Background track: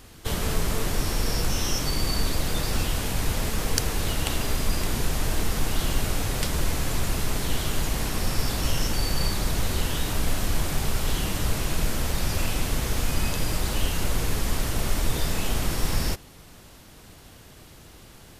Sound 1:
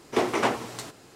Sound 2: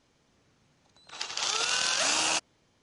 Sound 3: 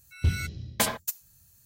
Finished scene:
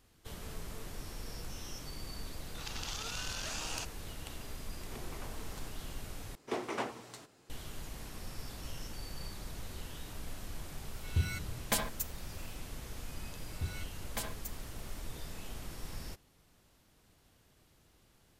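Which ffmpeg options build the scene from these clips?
-filter_complex "[1:a]asplit=2[a][b];[3:a]asplit=2[c][d];[0:a]volume=-18.5dB[e];[2:a]acompressor=threshold=-32dB:ratio=6:attack=3.2:release=140:knee=1:detection=peak[f];[a]acompressor=threshold=-38dB:ratio=6:attack=3.2:release=140:knee=1:detection=peak[g];[e]asplit=2[h][i];[h]atrim=end=6.354[j];[b]atrim=end=1.15,asetpts=PTS-STARTPTS,volume=-12.5dB[k];[i]atrim=start=7.496[l];[f]atrim=end=2.82,asetpts=PTS-STARTPTS,volume=-5.5dB,afade=t=in:d=0.004:c=hsin,afade=t=out:st=2.816:d=0.004:c=hsin,adelay=1460[m];[g]atrim=end=1.15,asetpts=PTS-STARTPTS,volume=-9.5dB,afade=t=in:d=0.004:c=hsin,afade=t=out:st=1.146:d=0.004:c=hsin,adelay=4790[n];[c]atrim=end=1.65,asetpts=PTS-STARTPTS,volume=-6.5dB,afade=t=in:d=0.004:c=hsin,afade=t=out:st=1.646:d=0.004:c=hsin,adelay=10920[o];[d]atrim=end=1.65,asetpts=PTS-STARTPTS,volume=-14dB,afade=t=in:d=0.004:c=hsin,afade=t=out:st=1.646:d=0.004:c=hsin,adelay=13370[p];[j][k]acrossfade=d=0.004:c1=hsin:c2=hsin[q];[q][l]acrossfade=d=0.004:c1=hsin:c2=hsin[r];[r][m][n][o][p]amix=inputs=5:normalize=0"

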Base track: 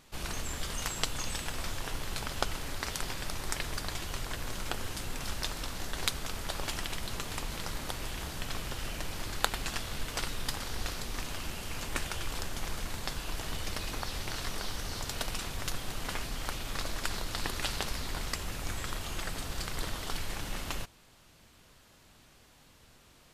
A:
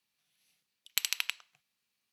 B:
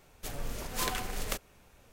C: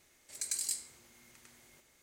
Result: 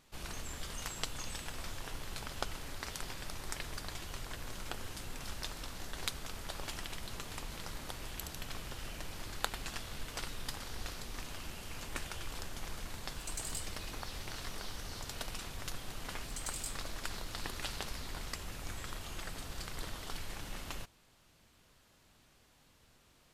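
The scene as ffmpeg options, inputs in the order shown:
-filter_complex "[3:a]asplit=2[a][b];[0:a]volume=-6.5dB[c];[1:a]aderivative,atrim=end=2.12,asetpts=PTS-STARTPTS,volume=-15dB,afade=t=in:d=0.004:c=hsin,afade=t=out:st=2.116:d=0.004:c=hsin,adelay=318402S[d];[a]atrim=end=2.02,asetpts=PTS-STARTPTS,volume=-7.5dB,afade=t=in:d=0.004:c=hsin,afade=t=out:st=2.016:d=0.004:c=hsin,adelay=12860[e];[b]atrim=end=2.02,asetpts=PTS-STARTPTS,volume=-7.5dB,afade=t=in:d=0.004:c=hsin,afade=t=out:st=2.016:d=0.004:c=hsin,adelay=15950[f];[c][d][e][f]amix=inputs=4:normalize=0"

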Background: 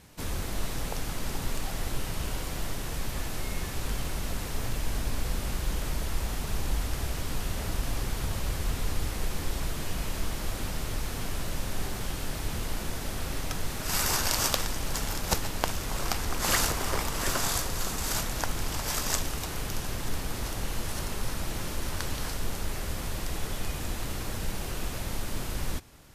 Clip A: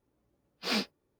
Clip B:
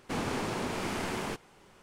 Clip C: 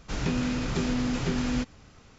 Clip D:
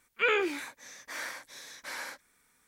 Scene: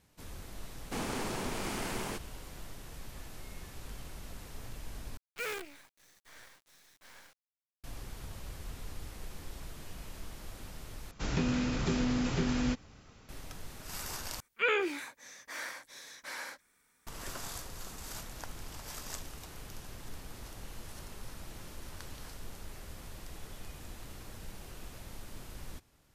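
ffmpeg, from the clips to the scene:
-filter_complex "[4:a]asplit=2[a][b];[0:a]volume=-13.5dB[c];[2:a]highshelf=f=6.6k:g=9.5[d];[a]acrusher=bits=5:dc=4:mix=0:aa=0.000001[e];[c]asplit=4[f][g][h][i];[f]atrim=end=5.174[j];[e]atrim=end=2.67,asetpts=PTS-STARTPTS,volume=-12.5dB[k];[g]atrim=start=7.836:end=11.114[l];[3:a]atrim=end=2.18,asetpts=PTS-STARTPTS,volume=-3dB[m];[h]atrim=start=13.286:end=14.404[n];[b]atrim=end=2.67,asetpts=PTS-STARTPTS,volume=-2.5dB[o];[i]atrim=start=17.066[p];[d]atrim=end=1.82,asetpts=PTS-STARTPTS,volume=-4dB,afade=t=in:d=0.004:c=hsin,afade=t=out:st=1.816:d=0.004:c=hsin,adelay=820[q];[j][k]acrossfade=d=0.004:c1=hsin:c2=hsin[r];[r][l]acrossfade=d=0.004:c1=hsin:c2=hsin[s];[s][m]acrossfade=d=0.004:c1=hsin:c2=hsin[t];[t][n]acrossfade=d=0.004:c1=hsin:c2=hsin[u];[u][o]acrossfade=d=0.004:c1=hsin:c2=hsin[v];[v][p]acrossfade=d=0.004:c1=hsin:c2=hsin[w];[w][q]amix=inputs=2:normalize=0"

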